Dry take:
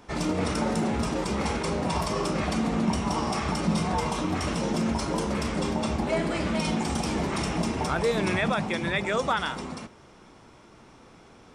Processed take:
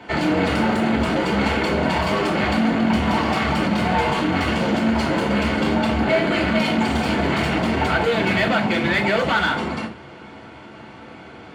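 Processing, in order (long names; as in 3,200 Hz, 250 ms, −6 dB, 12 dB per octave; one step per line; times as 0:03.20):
hard clipping −29.5 dBFS, distortion −7 dB
convolution reverb RT60 0.35 s, pre-delay 3 ms, DRR −0.5 dB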